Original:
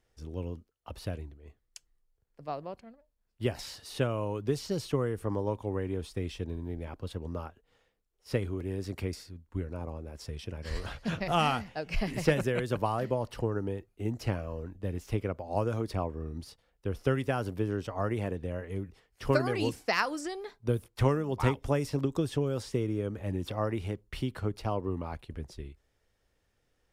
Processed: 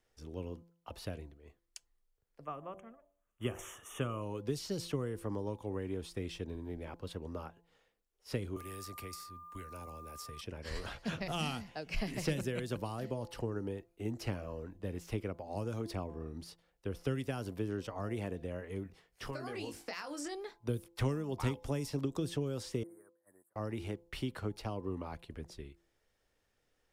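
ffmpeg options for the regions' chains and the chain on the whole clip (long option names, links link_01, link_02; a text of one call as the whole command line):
ffmpeg -i in.wav -filter_complex "[0:a]asettb=1/sr,asplit=3[link_01][link_02][link_03];[link_01]atrim=end=2.454[link_04];[link_02]atrim=start=2.45:end=4.22,asetpts=PTS-STARTPTS,afade=type=in:duration=0.004:curve=qsin,afade=type=out:start_time=1.766:duration=0.004:curve=qsin,asuperstop=centerf=4500:order=12:qfactor=1.9,equalizer=frequency=1200:width_type=o:width=0.25:gain=14.5,bandreject=frequency=95.82:width_type=h:width=4,bandreject=frequency=191.64:width_type=h:width=4,bandreject=frequency=287.46:width_type=h:width=4,bandreject=frequency=383.28:width_type=h:width=4,bandreject=frequency=479.1:width_type=h:width=4,bandreject=frequency=574.92:width_type=h:width=4,bandreject=frequency=670.74:width_type=h:width=4,bandreject=frequency=766.56:width_type=h:width=4[link_05];[link_03]atrim=start=4.216[link_06];[link_04][link_05]acrossfade=duration=0.004:curve1=hsin:curve2=qsin[link_07];[link_07][link_06]acrossfade=duration=0.004:curve1=qsin:curve2=hsin,asettb=1/sr,asplit=3[link_08][link_09][link_10];[link_08]atrim=end=8.564[link_11];[link_09]atrim=start=8.56:end=10.41,asetpts=PTS-STARTPTS,afade=type=in:duration=0.004:curve=qsin,afade=type=out:start_time=1.846:duration=0.004:curve=qsin,aemphasis=mode=production:type=75fm,acrossover=split=110|660|1900[link_12][link_13][link_14][link_15];[link_12]acompressor=threshold=-44dB:ratio=3[link_16];[link_13]acompressor=threshold=-48dB:ratio=3[link_17];[link_14]acompressor=threshold=-55dB:ratio=3[link_18];[link_15]acompressor=threshold=-48dB:ratio=3[link_19];[link_16][link_17][link_18][link_19]amix=inputs=4:normalize=0,aeval=exprs='val(0)+0.00447*sin(2*PI*1200*n/s)':channel_layout=same[link_20];[link_10]atrim=start=10.406[link_21];[link_11][link_20]acrossfade=duration=0.004:curve1=hsin:curve2=qsin[link_22];[link_22][link_21]acrossfade=duration=0.004:curve1=qsin:curve2=hsin,asettb=1/sr,asplit=3[link_23][link_24][link_25];[link_23]atrim=end=18.834[link_26];[link_24]atrim=start=18.83:end=20.35,asetpts=PTS-STARTPTS,afade=type=in:duration=0.004:curve=qsin,afade=type=out:start_time=1.516:duration=0.004:curve=qsin,acompressor=threshold=-34dB:ratio=5:attack=3.2:release=140:knee=1:detection=peak,asplit=2[link_27][link_28];[link_28]adelay=21,volume=-7dB[link_29];[link_27][link_29]amix=inputs=2:normalize=0,atrim=end_sample=67032[link_30];[link_25]atrim=start=20.346[link_31];[link_26][link_30]acrossfade=duration=0.004:curve1=hsin:curve2=qsin[link_32];[link_32][link_31]acrossfade=duration=0.004:curve1=qsin:curve2=hsin,asettb=1/sr,asplit=3[link_33][link_34][link_35];[link_33]atrim=end=22.834[link_36];[link_34]atrim=start=22.83:end=23.56,asetpts=PTS-STARTPTS,afade=type=in:duration=0.004:curve=qsin,afade=type=out:start_time=0.726:duration=0.004:curve=qsin,agate=range=-20dB:threshold=-33dB:ratio=16:release=100:detection=peak,asuperstop=centerf=3900:order=12:qfactor=0.64,aderivative[link_37];[link_35]atrim=start=23.556[link_38];[link_36][link_37]acrossfade=duration=0.004:curve1=hsin:curve2=qsin[link_39];[link_39][link_38]acrossfade=duration=0.004:curve1=qsin:curve2=hsin,equalizer=frequency=61:width=0.39:gain=-6.5,bandreject=frequency=170:width_type=h:width=4,bandreject=frequency=340:width_type=h:width=4,bandreject=frequency=510:width_type=h:width=4,bandreject=frequency=680:width_type=h:width=4,bandreject=frequency=850:width_type=h:width=4,bandreject=frequency=1020:width_type=h:width=4,acrossover=split=330|3000[link_40][link_41][link_42];[link_41]acompressor=threshold=-39dB:ratio=6[link_43];[link_40][link_43][link_42]amix=inputs=3:normalize=0,volume=-1.5dB" out.wav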